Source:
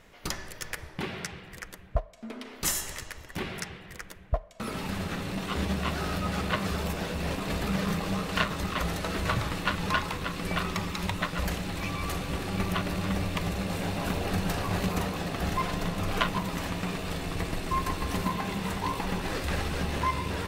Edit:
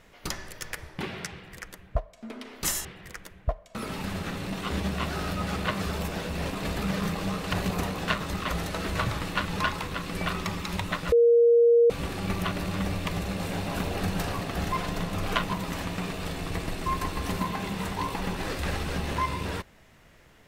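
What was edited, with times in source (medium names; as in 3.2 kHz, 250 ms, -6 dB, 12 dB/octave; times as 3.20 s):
2.85–3.70 s: delete
11.42–12.20 s: bleep 470 Hz -15 dBFS
14.71–15.26 s: move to 8.38 s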